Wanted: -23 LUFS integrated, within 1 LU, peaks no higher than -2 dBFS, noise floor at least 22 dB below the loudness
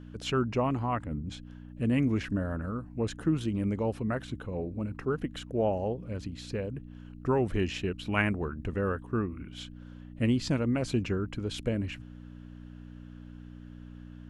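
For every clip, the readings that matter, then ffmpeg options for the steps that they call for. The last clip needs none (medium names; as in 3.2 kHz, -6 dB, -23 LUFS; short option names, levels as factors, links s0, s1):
hum 60 Hz; highest harmonic 300 Hz; hum level -44 dBFS; loudness -31.5 LUFS; peak level -12.0 dBFS; loudness target -23.0 LUFS
-> -af "bandreject=f=60:t=h:w=4,bandreject=f=120:t=h:w=4,bandreject=f=180:t=h:w=4,bandreject=f=240:t=h:w=4,bandreject=f=300:t=h:w=4"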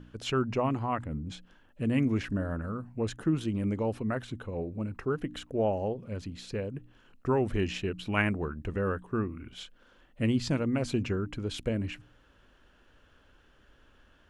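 hum not found; loudness -32.0 LUFS; peak level -12.0 dBFS; loudness target -23.0 LUFS
-> -af "volume=2.82"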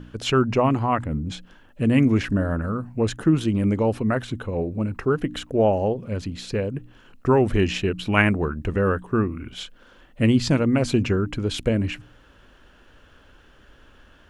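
loudness -23.0 LUFS; peak level -3.0 dBFS; noise floor -53 dBFS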